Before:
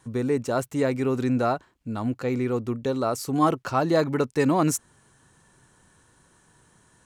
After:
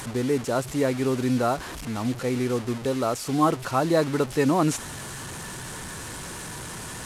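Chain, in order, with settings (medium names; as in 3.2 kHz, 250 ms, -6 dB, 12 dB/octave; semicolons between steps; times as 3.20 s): one-bit delta coder 64 kbps, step -30 dBFS; Vorbis 128 kbps 48 kHz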